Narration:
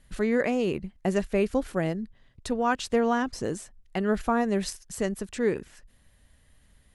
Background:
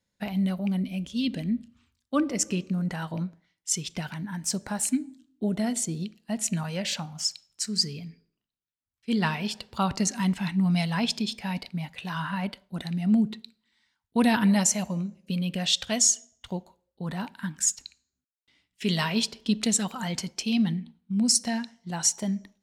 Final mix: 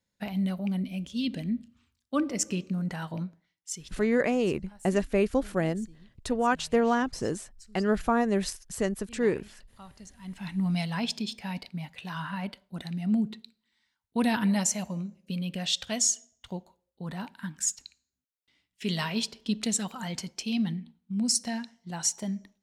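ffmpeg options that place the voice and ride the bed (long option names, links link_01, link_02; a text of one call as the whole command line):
ffmpeg -i stem1.wav -i stem2.wav -filter_complex "[0:a]adelay=3800,volume=0dB[link_01];[1:a]volume=16.5dB,afade=type=out:start_time=3.15:duration=0.93:silence=0.0944061,afade=type=in:start_time=10.21:duration=0.41:silence=0.112202[link_02];[link_01][link_02]amix=inputs=2:normalize=0" out.wav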